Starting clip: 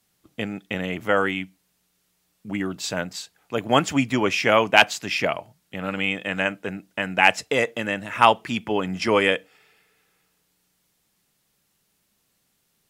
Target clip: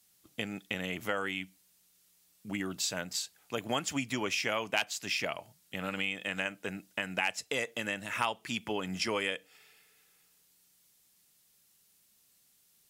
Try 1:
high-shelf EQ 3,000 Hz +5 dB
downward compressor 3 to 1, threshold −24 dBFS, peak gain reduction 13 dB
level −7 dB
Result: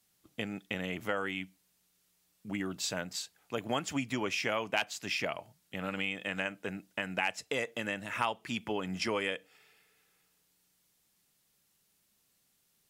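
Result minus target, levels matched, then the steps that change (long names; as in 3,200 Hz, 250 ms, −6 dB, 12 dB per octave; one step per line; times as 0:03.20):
8,000 Hz band −3.0 dB
change: high-shelf EQ 3,000 Hz +12 dB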